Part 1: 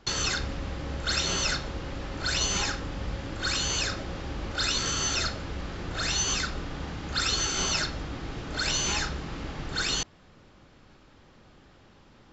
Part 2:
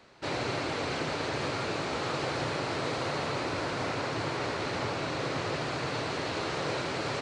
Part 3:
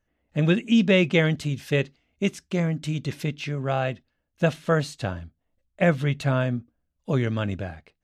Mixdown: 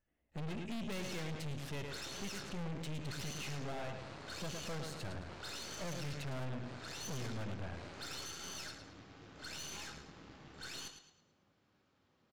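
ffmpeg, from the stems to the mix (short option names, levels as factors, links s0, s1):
-filter_complex "[0:a]highpass=98,flanger=delay=9.8:depth=6.1:regen=-46:speed=0.37:shape=triangular,adelay=850,volume=0.316,asplit=2[s0][s1];[s1]volume=0.335[s2];[1:a]adelay=1050,volume=0.158[s3];[2:a]alimiter=limit=0.133:level=0:latency=1:release=228,volume=0.562,asplit=3[s4][s5][s6];[s5]volume=0.376[s7];[s6]apad=whole_len=364479[s8];[s3][s8]sidechaincompress=threshold=0.00501:ratio=8:attack=16:release=104[s9];[s2][s7]amix=inputs=2:normalize=0,aecho=0:1:109|218|327|436|545:1|0.39|0.152|0.0593|0.0231[s10];[s0][s9][s4][s10]amix=inputs=4:normalize=0,aeval=exprs='(tanh(100*val(0)+0.75)-tanh(0.75))/100':c=same"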